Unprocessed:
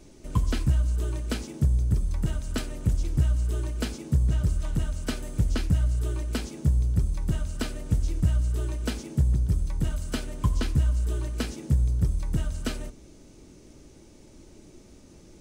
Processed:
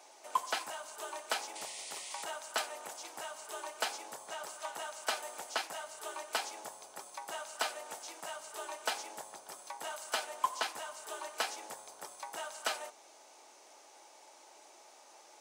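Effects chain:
four-pole ladder high-pass 710 Hz, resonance 60%
sound drawn into the spectrogram noise, 0:01.55–0:02.25, 1,800–10,000 Hz −57 dBFS
level +11 dB

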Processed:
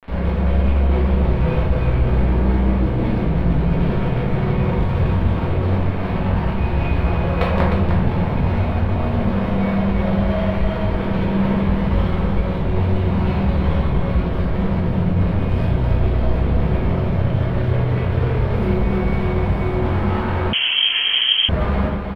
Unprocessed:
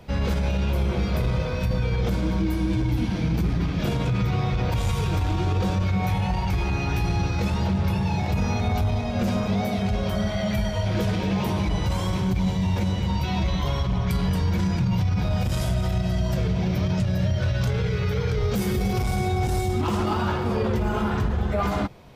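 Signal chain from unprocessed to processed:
0:06.96–0:07.64: hollow resonant body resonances 570/1,100 Hz, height 13 dB → 16 dB, ringing for 20 ms
log-companded quantiser 2 bits
high-frequency loss of the air 480 metres
single-tap delay 306 ms −6.5 dB
rectangular room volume 130 cubic metres, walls mixed, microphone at 1.6 metres
0:20.53–0:21.49: voice inversion scrambler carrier 3,200 Hz
level −1.5 dB

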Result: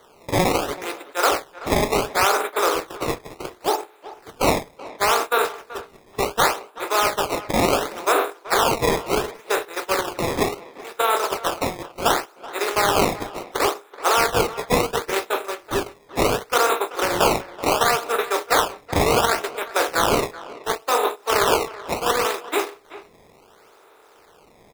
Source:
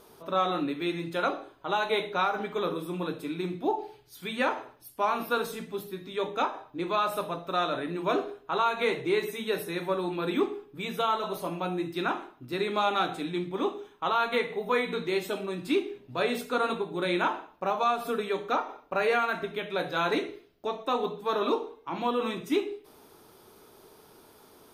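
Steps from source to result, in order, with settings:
compressor on every frequency bin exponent 0.4
noise gate −21 dBFS, range −24 dB
high-pass filter 390 Hz 24 dB per octave
sample-and-hold swept by an LFO 17×, swing 160% 0.7 Hz
far-end echo of a speakerphone 380 ms, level −16 dB
level +3 dB

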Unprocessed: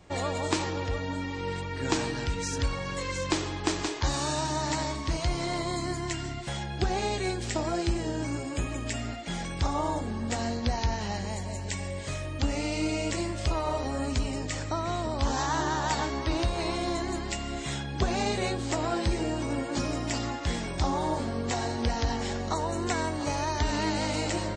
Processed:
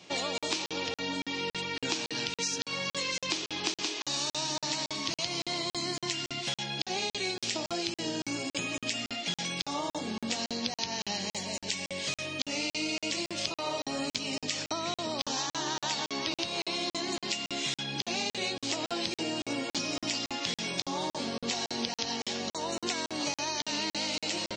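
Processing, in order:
high-pass filter 150 Hz 24 dB per octave
flat-topped bell 3,900 Hz +11.5 dB
downward compressor, threshold −29 dBFS, peak gain reduction 11.5 dB
regular buffer underruns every 0.28 s, samples 2,048, zero, from 0:00.38

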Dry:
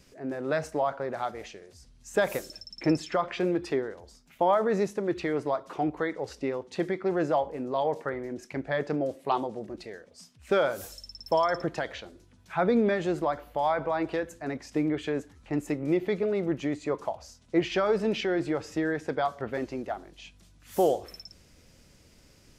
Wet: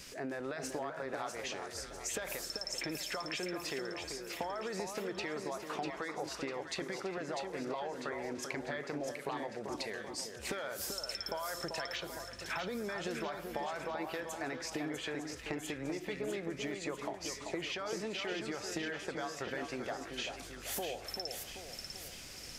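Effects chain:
tilt shelving filter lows −6 dB, about 890 Hz
brickwall limiter −22.5 dBFS, peak gain reduction 11.5 dB
downward compressor 12 to 1, threshold −43 dBFS, peak gain reduction 17 dB
echo with a time of its own for lows and highs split 1,500 Hz, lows 388 ms, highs 648 ms, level −5.5 dB
level +6.5 dB

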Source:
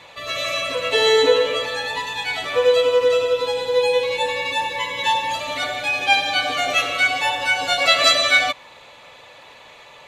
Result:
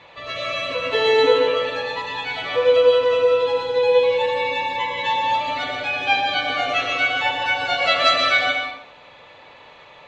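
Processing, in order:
high-frequency loss of the air 170 metres
dense smooth reverb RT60 0.67 s, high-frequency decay 0.85×, pre-delay 105 ms, DRR 3 dB
level −1 dB

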